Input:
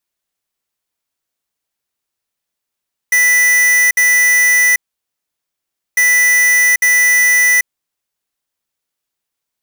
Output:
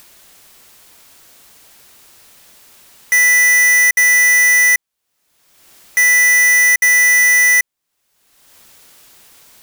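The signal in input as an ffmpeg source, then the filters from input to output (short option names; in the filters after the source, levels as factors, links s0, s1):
-f lavfi -i "aevalsrc='0.299*(2*lt(mod(1980*t,1),0.5)-1)*clip(min(mod(mod(t,2.85),0.85),0.79-mod(mod(t,2.85),0.85))/0.005,0,1)*lt(mod(t,2.85),1.7)':d=5.7:s=44100"
-af "acompressor=mode=upward:threshold=0.112:ratio=2.5"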